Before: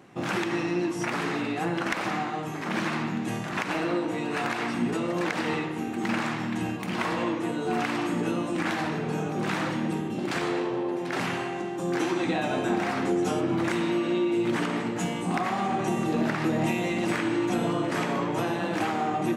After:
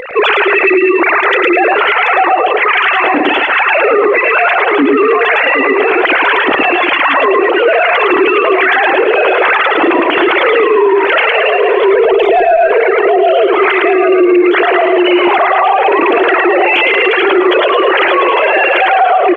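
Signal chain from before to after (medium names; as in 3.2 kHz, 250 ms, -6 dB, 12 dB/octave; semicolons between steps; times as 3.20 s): formants replaced by sine waves; tilt EQ +3 dB/octave; 11.94–12.57 s: small resonant body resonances 450/660 Hz, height 17 dB, ringing for 40 ms; reverb removal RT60 1.8 s; upward compressor, threshold -47 dBFS; echo whose repeats swap between lows and highs 764 ms, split 810 Hz, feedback 61%, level -9 dB; Chebyshev shaper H 2 -18 dB, 4 -31 dB, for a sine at -6 dBFS; compression 6:1, threshold -27 dBFS, peak gain reduction 14.5 dB; 4.53–5.42 s: low-pass 2.1 kHz -> 3.3 kHz 12 dB/octave; feedback delay 109 ms, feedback 28%, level -4 dB; loudness maximiser +29 dB; trim -1 dB; G.722 64 kbps 16 kHz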